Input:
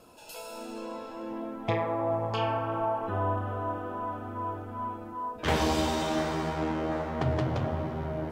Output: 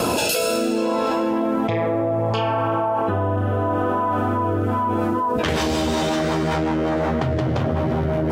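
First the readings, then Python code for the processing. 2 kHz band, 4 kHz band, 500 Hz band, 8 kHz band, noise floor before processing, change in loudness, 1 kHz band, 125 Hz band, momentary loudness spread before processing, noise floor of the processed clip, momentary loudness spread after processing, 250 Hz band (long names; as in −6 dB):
+9.5 dB, +10.0 dB, +10.5 dB, +13.5 dB, −43 dBFS, +10.0 dB, +9.0 dB, +9.5 dB, 11 LU, −22 dBFS, 1 LU, +11.5 dB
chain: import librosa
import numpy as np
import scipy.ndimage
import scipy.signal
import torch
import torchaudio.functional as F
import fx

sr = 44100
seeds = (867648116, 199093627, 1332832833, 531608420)

y = scipy.signal.sosfilt(scipy.signal.butter(2, 74.0, 'highpass', fs=sr, output='sos'), x)
y = fx.rotary_switch(y, sr, hz=0.65, then_hz=5.5, switch_at_s=4.27)
y = fx.env_flatten(y, sr, amount_pct=100)
y = y * librosa.db_to_amplitude(5.5)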